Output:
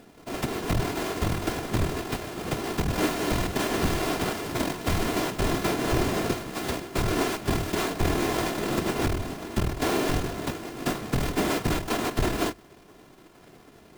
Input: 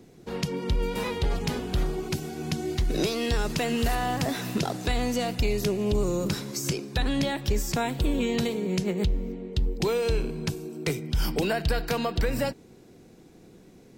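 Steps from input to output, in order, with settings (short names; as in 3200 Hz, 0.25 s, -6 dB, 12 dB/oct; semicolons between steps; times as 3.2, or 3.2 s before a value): sample sorter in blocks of 128 samples; whisperiser; notches 50/100 Hz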